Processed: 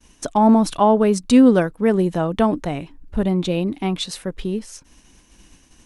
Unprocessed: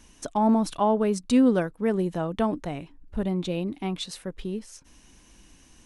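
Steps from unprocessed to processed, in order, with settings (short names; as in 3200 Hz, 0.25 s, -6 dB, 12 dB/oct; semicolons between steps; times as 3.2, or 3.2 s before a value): expander -48 dBFS; gain +7.5 dB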